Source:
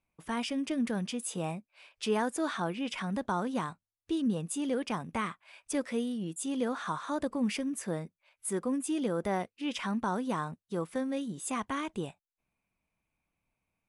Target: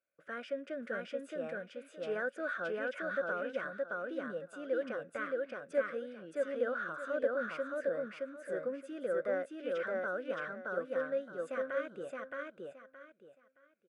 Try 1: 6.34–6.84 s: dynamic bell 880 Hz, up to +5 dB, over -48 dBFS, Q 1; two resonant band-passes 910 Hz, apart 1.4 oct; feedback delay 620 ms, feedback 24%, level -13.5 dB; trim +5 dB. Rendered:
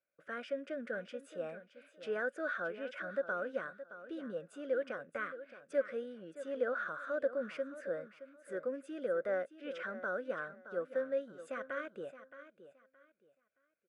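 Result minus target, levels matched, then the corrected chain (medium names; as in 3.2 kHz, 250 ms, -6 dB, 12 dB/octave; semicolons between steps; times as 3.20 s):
echo-to-direct -11.5 dB
6.34–6.84 s: dynamic bell 880 Hz, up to +5 dB, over -48 dBFS, Q 1; two resonant band-passes 910 Hz, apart 1.4 oct; feedback delay 620 ms, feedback 24%, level -2 dB; trim +5 dB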